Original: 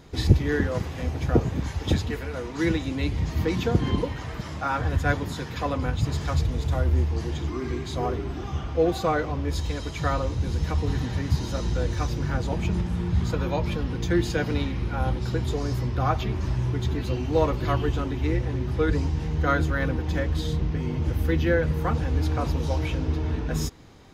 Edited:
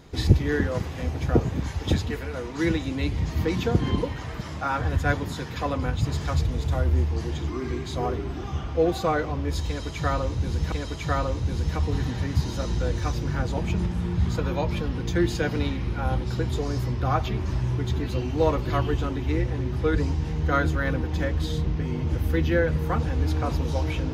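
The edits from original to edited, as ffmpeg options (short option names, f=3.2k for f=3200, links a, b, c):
-filter_complex "[0:a]asplit=2[a][b];[a]atrim=end=10.722[c];[b]atrim=start=9.668[d];[c][d]acrossfade=d=0.004:c1=hsin:c2=hsin"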